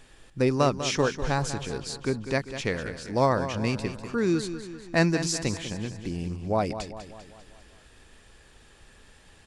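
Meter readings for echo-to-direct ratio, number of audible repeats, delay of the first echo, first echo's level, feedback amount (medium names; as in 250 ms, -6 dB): -9.5 dB, 5, 197 ms, -11.0 dB, 53%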